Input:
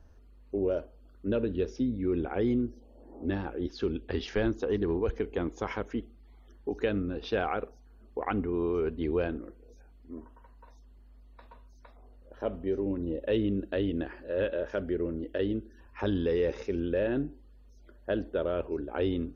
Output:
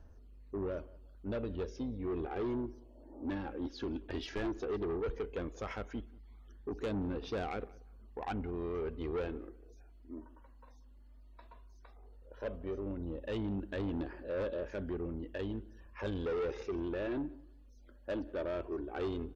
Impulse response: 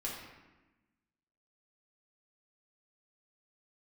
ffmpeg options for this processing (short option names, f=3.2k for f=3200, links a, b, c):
-filter_complex "[0:a]flanger=delay=0:depth=3.8:regen=38:speed=0.14:shape=triangular,asoftclip=type=tanh:threshold=-31.5dB,asplit=2[a][b];[b]adelay=182,lowpass=f=2.4k:p=1,volume=-22dB,asplit=2[c][d];[d]adelay=182,lowpass=f=2.4k:p=1,volume=0.25[e];[c][e]amix=inputs=2:normalize=0[f];[a][f]amix=inputs=2:normalize=0"